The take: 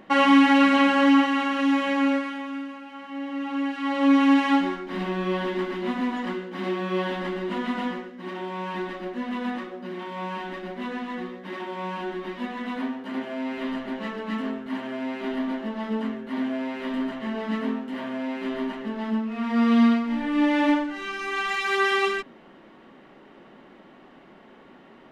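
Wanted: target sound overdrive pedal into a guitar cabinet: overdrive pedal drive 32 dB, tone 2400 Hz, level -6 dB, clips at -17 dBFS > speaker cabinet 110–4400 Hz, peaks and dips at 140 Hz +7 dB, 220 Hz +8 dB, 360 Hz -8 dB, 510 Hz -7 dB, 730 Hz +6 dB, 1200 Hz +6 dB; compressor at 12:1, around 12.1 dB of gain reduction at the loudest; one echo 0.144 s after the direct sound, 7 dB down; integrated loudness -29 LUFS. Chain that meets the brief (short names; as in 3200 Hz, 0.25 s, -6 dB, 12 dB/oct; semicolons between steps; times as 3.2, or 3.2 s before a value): compressor 12:1, threshold -26 dBFS; echo 0.144 s -7 dB; overdrive pedal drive 32 dB, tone 2400 Hz, level -6 dB, clips at -17 dBFS; speaker cabinet 110–4400 Hz, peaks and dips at 140 Hz +7 dB, 220 Hz +8 dB, 360 Hz -8 dB, 510 Hz -7 dB, 730 Hz +6 dB, 1200 Hz +6 dB; gain -7 dB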